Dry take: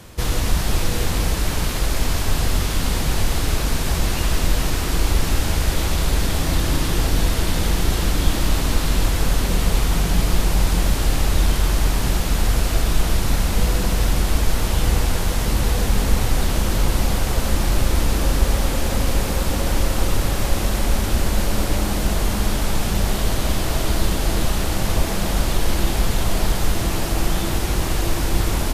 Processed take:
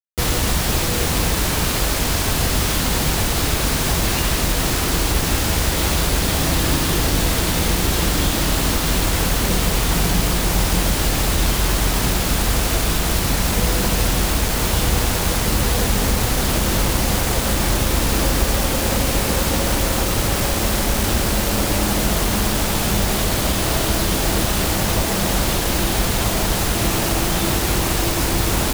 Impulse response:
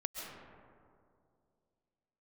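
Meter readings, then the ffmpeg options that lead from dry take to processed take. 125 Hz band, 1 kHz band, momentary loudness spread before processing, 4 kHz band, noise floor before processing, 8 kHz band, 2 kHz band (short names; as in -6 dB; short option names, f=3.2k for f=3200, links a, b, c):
+0.5 dB, +4.0 dB, 2 LU, +5.0 dB, -23 dBFS, +6.0 dB, +5.0 dB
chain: -filter_complex "[0:a]asplit=2[a][b];[b]alimiter=limit=-12dB:level=0:latency=1:release=221,volume=-2dB[c];[a][c]amix=inputs=2:normalize=0,acrusher=bits=3:mix=0:aa=0.000001,highpass=f=77:p=1"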